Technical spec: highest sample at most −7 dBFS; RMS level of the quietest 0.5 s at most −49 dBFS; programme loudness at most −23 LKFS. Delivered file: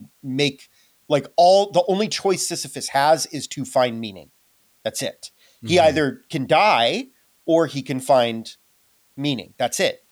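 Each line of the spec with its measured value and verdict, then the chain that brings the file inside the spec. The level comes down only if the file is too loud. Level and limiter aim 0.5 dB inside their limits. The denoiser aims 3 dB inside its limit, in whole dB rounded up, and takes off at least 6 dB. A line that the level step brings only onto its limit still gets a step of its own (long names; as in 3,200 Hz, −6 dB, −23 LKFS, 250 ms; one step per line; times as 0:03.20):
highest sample −6.0 dBFS: out of spec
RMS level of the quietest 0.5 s −61 dBFS: in spec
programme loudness −20.0 LKFS: out of spec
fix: level −3.5 dB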